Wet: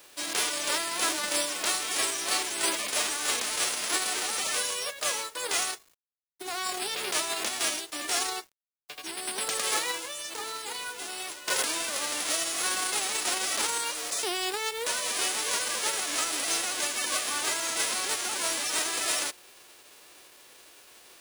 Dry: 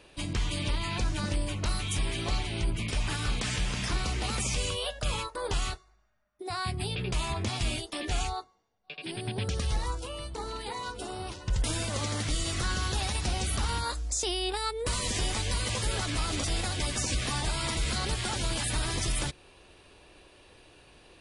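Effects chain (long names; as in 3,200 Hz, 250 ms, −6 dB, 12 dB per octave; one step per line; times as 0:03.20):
spectral envelope flattened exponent 0.3
high-pass filter 270 Hz 24 dB per octave
log-companded quantiser 4 bits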